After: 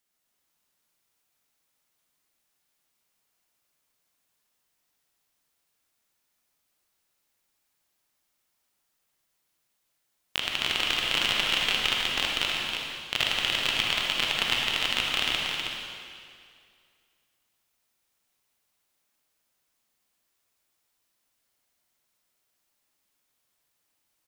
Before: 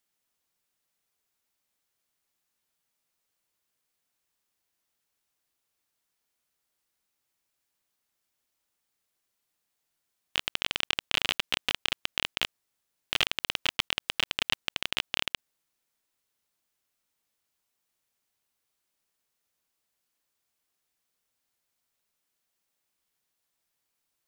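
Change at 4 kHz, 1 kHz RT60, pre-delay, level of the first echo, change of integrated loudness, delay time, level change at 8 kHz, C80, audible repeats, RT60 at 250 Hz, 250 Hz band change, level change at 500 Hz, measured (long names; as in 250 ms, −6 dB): +5.0 dB, 2.2 s, 35 ms, −11.5 dB, +4.5 dB, 254 ms, +4.5 dB, −1.5 dB, 2, 2.1 s, +5.0 dB, +5.0 dB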